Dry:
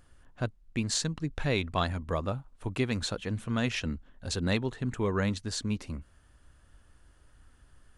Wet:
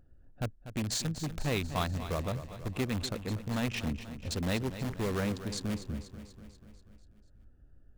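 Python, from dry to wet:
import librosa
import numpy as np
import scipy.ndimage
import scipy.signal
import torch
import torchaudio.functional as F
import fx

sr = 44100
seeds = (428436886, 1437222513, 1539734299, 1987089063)

p1 = fx.wiener(x, sr, points=41)
p2 = (np.mod(10.0 ** (26.5 / 20.0) * p1 + 1.0, 2.0) - 1.0) / 10.0 ** (26.5 / 20.0)
p3 = p1 + F.gain(torch.from_numpy(p2), -7.0).numpy()
p4 = fx.echo_feedback(p3, sr, ms=243, feedback_pct=59, wet_db=-12.0)
y = F.gain(torch.from_numpy(p4), -3.5).numpy()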